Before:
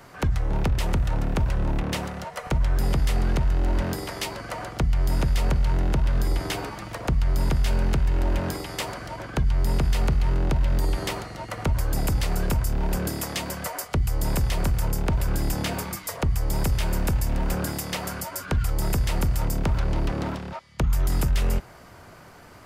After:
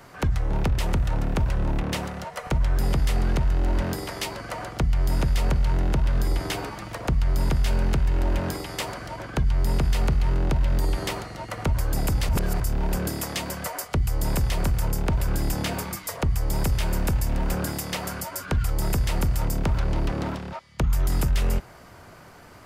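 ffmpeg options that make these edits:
ffmpeg -i in.wav -filter_complex "[0:a]asplit=3[link_01][link_02][link_03];[link_01]atrim=end=12.292[link_04];[link_02]atrim=start=12.288:end=12.602,asetpts=PTS-STARTPTS,areverse[link_05];[link_03]atrim=start=12.598[link_06];[link_04][link_05]acrossfade=duration=0.004:curve1=hsin:curve2=hsin[link_07];[link_07][link_06]acrossfade=duration=0.004:curve1=hsin:curve2=hsin" out.wav

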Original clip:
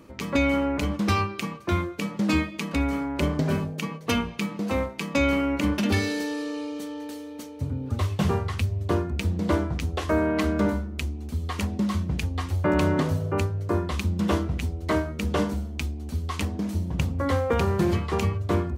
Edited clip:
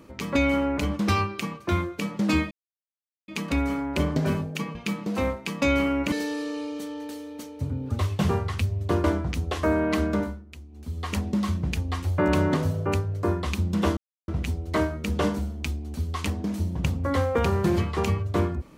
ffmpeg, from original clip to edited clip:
ffmpeg -i in.wav -filter_complex "[0:a]asplit=8[link_01][link_02][link_03][link_04][link_05][link_06][link_07][link_08];[link_01]atrim=end=2.51,asetpts=PTS-STARTPTS,afade=type=out:start_time=2.506:duration=0.004:curve=hsin,apad=pad_dur=0.77[link_09];[link_02]atrim=start=2.51:end=3.982,asetpts=PTS-STARTPTS,afade=type=in:duration=0.004:curve=hsin[link_10];[link_03]atrim=start=4.278:end=5.652[link_11];[link_04]atrim=start=6.118:end=9.042[link_12];[link_05]atrim=start=9.498:end=10.92,asetpts=PTS-STARTPTS,afade=type=out:start_time=1.002:duration=0.42:silence=0.199526[link_13];[link_06]atrim=start=10.92:end=11.15,asetpts=PTS-STARTPTS,volume=-14dB[link_14];[link_07]atrim=start=11.15:end=14.43,asetpts=PTS-STARTPTS,afade=type=in:duration=0.42:silence=0.199526,afade=type=out:start_time=3.276:duration=0.004:curve=hsin,apad=pad_dur=0.31[link_15];[link_08]atrim=start=14.43,asetpts=PTS-STARTPTS,afade=type=in:duration=0.004:curve=hsin[link_16];[link_09][link_10]concat=n=2:v=0:a=1[link_17];[link_17][link_11]acrossfade=duration=0.004:curve1=hsin:curve2=hsin[link_18];[link_18][link_12]acrossfade=duration=0.004:curve1=hsin:curve2=hsin[link_19];[link_13][link_14][link_15][link_16]concat=n=4:v=0:a=1[link_20];[link_19][link_20]acrossfade=duration=0.004:curve1=hsin:curve2=hsin" out.wav

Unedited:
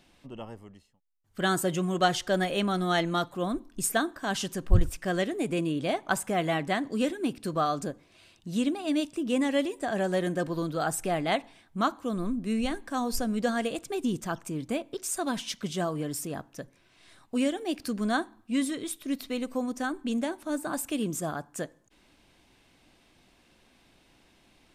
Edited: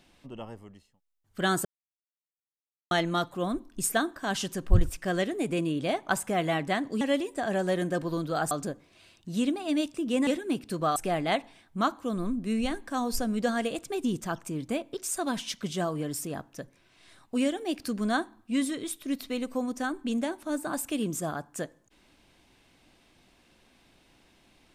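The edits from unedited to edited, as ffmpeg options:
ffmpeg -i in.wav -filter_complex "[0:a]asplit=7[link_01][link_02][link_03][link_04][link_05][link_06][link_07];[link_01]atrim=end=1.65,asetpts=PTS-STARTPTS,afade=type=out:start_time=1.646:duration=0.004:curve=hsin[link_08];[link_02]atrim=start=1.65:end=2.91,asetpts=PTS-STARTPTS,volume=0[link_09];[link_03]atrim=start=2.91:end=7.012,asetpts=PTS-STARTPTS,afade=type=in:duration=0.004:curve=hsin[link_10];[link_04]atrim=start=9.458:end=10.962[link_11];[link_05]atrim=start=7.698:end=9.462[link_12];[link_06]atrim=start=7.008:end=7.702[link_13];[link_07]atrim=start=10.958[link_14];[link_08][link_09][link_10]concat=n=3:v=0:a=1[link_15];[link_15][link_11]acrossfade=duration=0.004:curve1=hsin:curve2=hsin[link_16];[link_16][link_12]acrossfade=duration=0.004:curve1=hsin:curve2=hsin[link_17];[link_17][link_13]acrossfade=duration=0.004:curve1=hsin:curve2=hsin[link_18];[link_18][link_14]acrossfade=duration=0.004:curve1=hsin:curve2=hsin" out.wav

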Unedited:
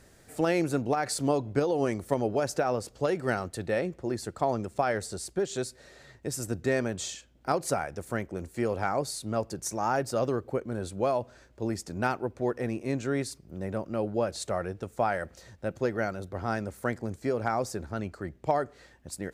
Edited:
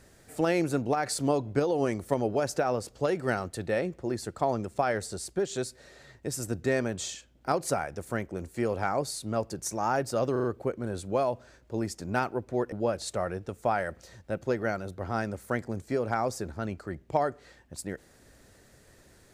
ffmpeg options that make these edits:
ffmpeg -i in.wav -filter_complex "[0:a]asplit=5[link_01][link_02][link_03][link_04][link_05];[link_01]atrim=end=10.362[link_06];[link_02]atrim=start=10.318:end=10.362[link_07];[link_03]atrim=start=10.318:end=10.362[link_08];[link_04]atrim=start=10.318:end=12.602[link_09];[link_05]atrim=start=14.058[link_10];[link_06][link_07]acrossfade=duration=0.004:curve1=hsin:curve2=hsin[link_11];[link_11][link_08]acrossfade=duration=0.004:curve1=hsin:curve2=hsin[link_12];[link_12][link_09]acrossfade=duration=0.004:curve1=hsin:curve2=hsin[link_13];[link_13][link_10]acrossfade=duration=0.004:curve1=hsin:curve2=hsin" out.wav

